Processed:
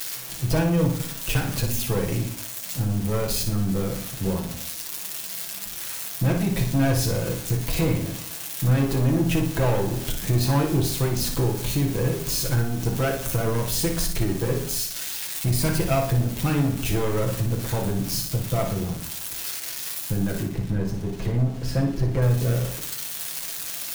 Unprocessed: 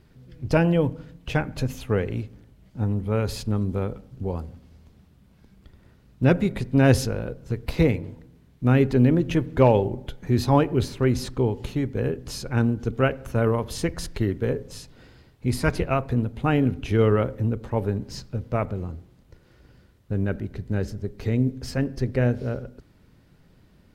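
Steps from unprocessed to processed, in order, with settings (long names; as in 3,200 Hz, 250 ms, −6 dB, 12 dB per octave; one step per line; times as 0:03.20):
spike at every zero crossing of −22 dBFS
0:20.42–0:22.22: low-pass filter 1,800 Hz 6 dB per octave
leveller curve on the samples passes 3
downward compressor, threshold −16 dBFS, peak gain reduction 7.5 dB
0:00.98–0:01.78: frequency shifter −20 Hz
flutter between parallel walls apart 9.9 metres, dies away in 0.45 s
on a send at −1.5 dB: convolution reverb RT60 0.35 s, pre-delay 6 ms
on the sum: level −8 dB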